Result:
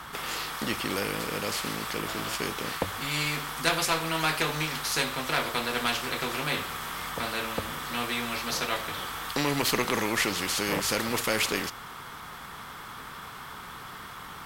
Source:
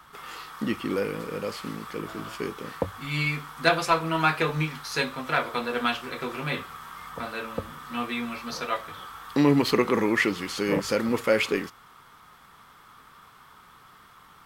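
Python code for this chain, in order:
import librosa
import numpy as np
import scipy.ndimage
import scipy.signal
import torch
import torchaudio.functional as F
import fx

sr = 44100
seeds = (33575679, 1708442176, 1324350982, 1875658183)

y = fx.cheby_harmonics(x, sr, harmonics=(6,), levels_db=(-34,), full_scale_db=-3.0)
y = fx.spectral_comp(y, sr, ratio=2.0)
y = y * librosa.db_to_amplitude(-4.5)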